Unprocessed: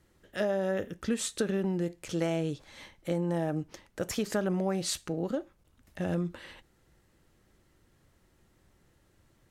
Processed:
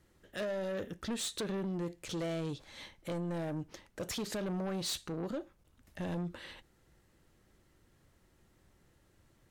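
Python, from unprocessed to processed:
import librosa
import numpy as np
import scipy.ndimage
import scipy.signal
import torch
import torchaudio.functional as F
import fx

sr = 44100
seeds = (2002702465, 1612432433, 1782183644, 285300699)

y = fx.dynamic_eq(x, sr, hz=3800.0, q=2.8, threshold_db=-59.0, ratio=4.0, max_db=7)
y = 10.0 ** (-30.5 / 20.0) * np.tanh(y / 10.0 ** (-30.5 / 20.0))
y = F.gain(torch.from_numpy(y), -1.5).numpy()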